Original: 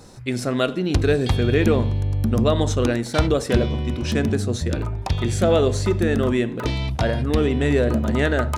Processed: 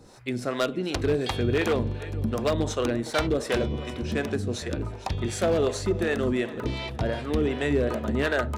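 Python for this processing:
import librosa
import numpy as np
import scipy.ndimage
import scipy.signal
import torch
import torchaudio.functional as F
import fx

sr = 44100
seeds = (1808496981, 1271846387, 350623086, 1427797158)

p1 = fx.bass_treble(x, sr, bass_db=-6, treble_db=-3)
p2 = p1 + fx.echo_feedback(p1, sr, ms=464, feedback_pct=55, wet_db=-17.5, dry=0)
p3 = 10.0 ** (-13.0 / 20.0) * (np.abs((p2 / 10.0 ** (-13.0 / 20.0) + 3.0) % 4.0 - 2.0) - 1.0)
y = fx.harmonic_tremolo(p3, sr, hz=2.7, depth_pct=70, crossover_hz=430.0)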